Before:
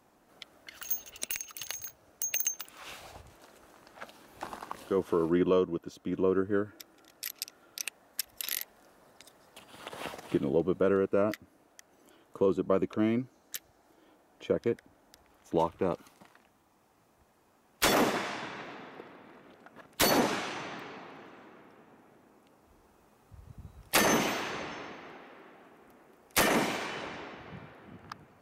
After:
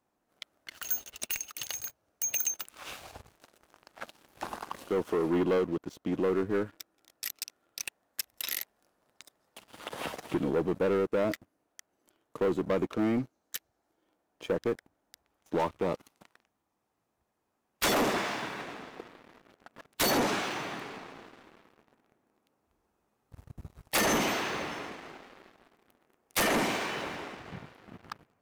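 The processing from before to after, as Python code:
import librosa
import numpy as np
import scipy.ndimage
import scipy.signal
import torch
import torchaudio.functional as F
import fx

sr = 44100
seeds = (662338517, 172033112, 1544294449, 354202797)

y = fx.leveller(x, sr, passes=3)
y = y * 10.0 ** (-8.0 / 20.0)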